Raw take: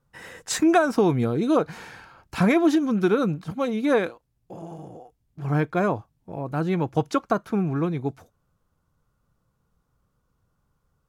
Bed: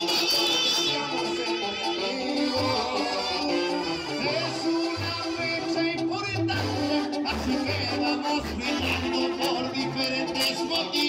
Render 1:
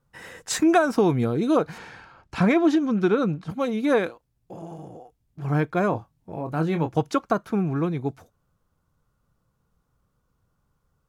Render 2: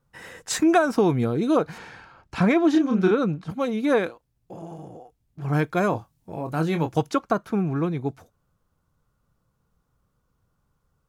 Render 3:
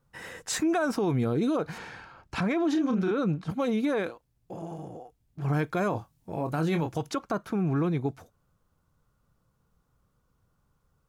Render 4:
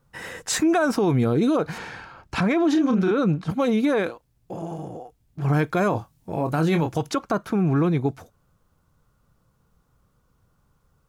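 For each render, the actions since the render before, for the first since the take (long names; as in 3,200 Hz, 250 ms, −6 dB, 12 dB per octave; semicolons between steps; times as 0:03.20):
0:01.78–0:03.49: high-frequency loss of the air 57 metres; 0:05.90–0:06.92: double-tracking delay 25 ms −8 dB
0:02.71–0:03.11: double-tracking delay 32 ms −3.5 dB; 0:05.53–0:07.09: high-shelf EQ 3,500 Hz +9 dB
brickwall limiter −19.5 dBFS, peak gain reduction 11 dB
level +6 dB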